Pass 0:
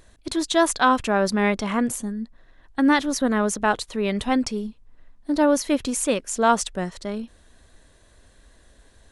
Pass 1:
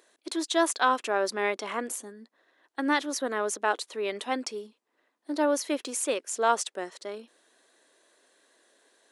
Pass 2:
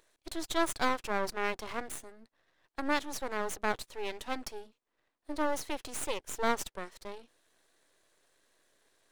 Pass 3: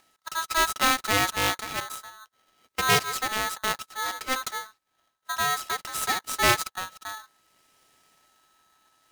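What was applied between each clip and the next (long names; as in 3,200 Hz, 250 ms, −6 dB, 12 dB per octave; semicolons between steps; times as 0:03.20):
Chebyshev high-pass filter 340 Hz, order 3; level −4.5 dB
half-wave rectification; level −2.5 dB
rotating-speaker cabinet horn 0.6 Hz; ring modulator with a square carrier 1,300 Hz; level +8.5 dB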